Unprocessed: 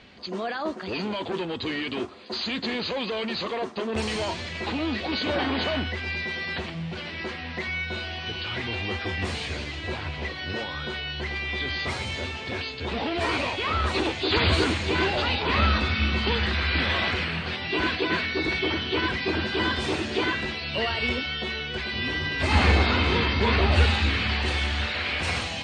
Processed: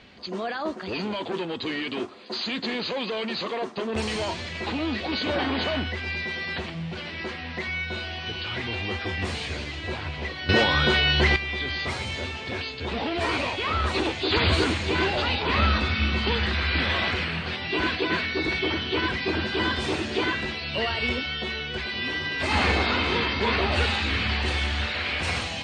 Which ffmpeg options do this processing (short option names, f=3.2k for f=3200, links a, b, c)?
-filter_complex "[0:a]asettb=1/sr,asplit=3[a][b][c];[a]atrim=end=1.204[d];[b]atrim=start=1.2:end=3.78,asetpts=PTS-STARTPTS,afade=t=in:d=0.004:c=qsin,afade=t=out:st=2.576:d=0.004:c=qsin,highpass=130[e];[c]atrim=start=3.776[f];[d][e]acrossfade=d=0.004:c1=hsin:c2=qsin[g];[g][f]acrossfade=d=0.004:c1=qsin:c2=hsin,asettb=1/sr,asplit=3[h][i][j];[h]atrim=end=21.864[k];[i]atrim=start=21.86:end=24.11,asetpts=PTS-STARTPTS,afade=t=in:d=0.004:c=qsin,afade=t=out:st=2.246:d=0.004:c=qsin,lowshelf=f=150:g=-9.5[l];[j]atrim=start=24.106[m];[k][l]acrossfade=d=0.004:c1=hsin:c2=qsin[n];[n][m]acrossfade=d=0.004:c1=qsin:c2=hsin,asplit=3[o][p][q];[o]atrim=end=10.492[r];[p]atrim=start=10.488:end=11.362,asetpts=PTS-STARTPTS,volume=11.5dB[s];[q]atrim=start=11.358[t];[r][s]acrossfade=d=0.004:c1=hsin:c2=hsin[u];[u][t]acrossfade=d=0.004:c1=hsin:c2=hsin"